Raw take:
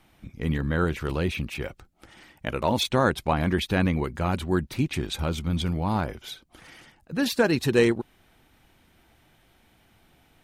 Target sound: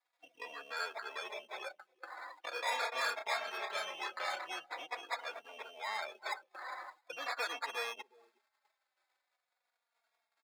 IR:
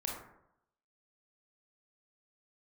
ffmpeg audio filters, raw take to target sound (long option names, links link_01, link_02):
-filter_complex "[0:a]agate=range=-13dB:threshold=-58dB:ratio=16:detection=peak,acrusher=samples=15:mix=1:aa=0.000001,asoftclip=type=hard:threshold=-26dB,acompressor=threshold=-41dB:ratio=8,asplit=3[link_01][link_02][link_03];[link_01]afade=type=out:start_time=2.5:duration=0.02[link_04];[link_02]asplit=2[link_05][link_06];[link_06]adelay=31,volume=-3dB[link_07];[link_05][link_07]amix=inputs=2:normalize=0,afade=type=in:start_time=2.5:duration=0.02,afade=type=out:start_time=4.53:duration=0.02[link_08];[link_03]afade=type=in:start_time=4.53:duration=0.02[link_09];[link_04][link_08][link_09]amix=inputs=3:normalize=0,asplit=2[link_10][link_11];[link_11]adelay=361.5,volume=-18dB,highshelf=frequency=4000:gain=-8.13[link_12];[link_10][link_12]amix=inputs=2:normalize=0,afftdn=noise_reduction=19:noise_floor=-53,highpass=frequency=590:width=0.5412,highpass=frequency=590:width=1.3066,equalizer=frequency=2900:width_type=o:width=2.3:gain=8.5,asplit=2[link_13][link_14];[link_14]adelay=3.6,afreqshift=-0.42[link_15];[link_13][link_15]amix=inputs=2:normalize=1,volume=8dB"